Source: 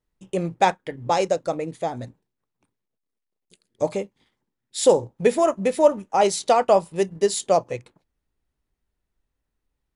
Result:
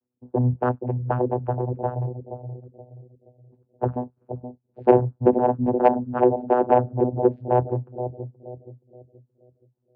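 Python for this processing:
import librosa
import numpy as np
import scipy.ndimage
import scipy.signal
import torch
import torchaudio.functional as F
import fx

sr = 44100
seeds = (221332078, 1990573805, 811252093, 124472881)

y = fx.wiener(x, sr, points=9)
y = fx.spec_gate(y, sr, threshold_db=-30, keep='strong')
y = scipy.signal.sosfilt(scipy.signal.butter(4, 1200.0, 'lowpass', fs=sr, output='sos'), y)
y = fx.env_flanger(y, sr, rest_ms=3.7, full_db=-13.5)
y = fx.notch_comb(y, sr, f0_hz=810.0)
y = 10.0 ** (-12.5 / 20.0) * np.tanh(y / 10.0 ** (-12.5 / 20.0))
y = fx.vocoder(y, sr, bands=8, carrier='saw', carrier_hz=124.0)
y = fx.echo_bbd(y, sr, ms=474, stages=2048, feedback_pct=37, wet_db=-8.0)
y = y * librosa.db_to_amplitude(6.0)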